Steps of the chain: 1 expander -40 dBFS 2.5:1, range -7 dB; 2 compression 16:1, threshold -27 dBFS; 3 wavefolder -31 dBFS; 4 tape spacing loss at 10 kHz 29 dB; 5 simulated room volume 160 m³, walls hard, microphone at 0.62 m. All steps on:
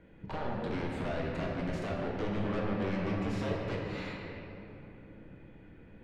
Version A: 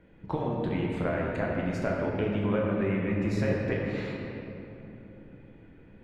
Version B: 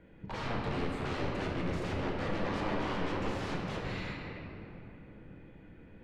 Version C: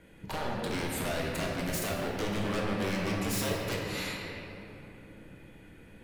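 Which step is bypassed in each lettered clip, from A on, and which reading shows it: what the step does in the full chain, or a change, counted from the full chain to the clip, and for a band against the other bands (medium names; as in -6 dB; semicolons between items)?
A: 3, 4 kHz band -6.0 dB; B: 2, mean gain reduction 7.5 dB; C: 4, 4 kHz band +9.0 dB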